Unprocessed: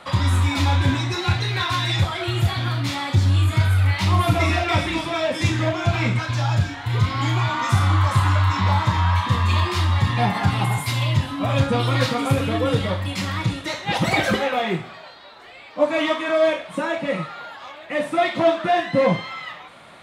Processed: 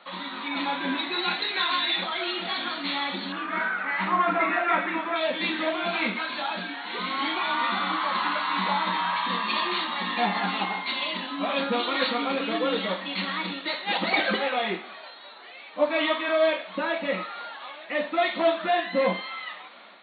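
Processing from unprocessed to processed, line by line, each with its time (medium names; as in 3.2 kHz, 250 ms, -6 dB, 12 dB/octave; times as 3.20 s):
0.48–0.98 s: distance through air 200 m
3.32–5.16 s: resonant low-pass 1.6 kHz, resonance Q 2.2
whole clip: tilt EQ +1.5 dB/octave; FFT band-pass 180–4500 Hz; level rider gain up to 6.5 dB; trim -8.5 dB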